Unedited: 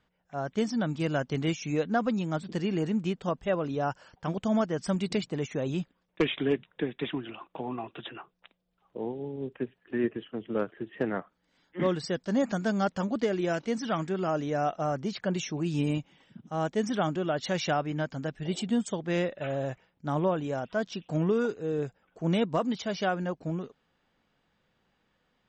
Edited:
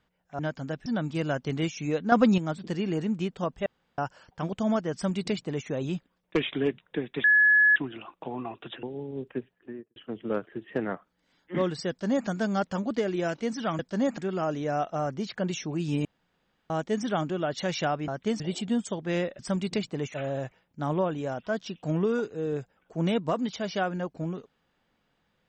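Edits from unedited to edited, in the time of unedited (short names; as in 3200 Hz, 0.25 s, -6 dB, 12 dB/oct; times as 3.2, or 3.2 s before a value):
0.39–0.71 swap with 17.94–18.41
1.97–2.23 gain +8 dB
3.51–3.83 room tone
4.78–5.53 copy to 19.4
7.09 add tone 1700 Hz -16 dBFS 0.52 s
8.16–9.08 cut
9.59–10.21 studio fade out
12.14–12.53 copy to 14.04
15.91–16.56 room tone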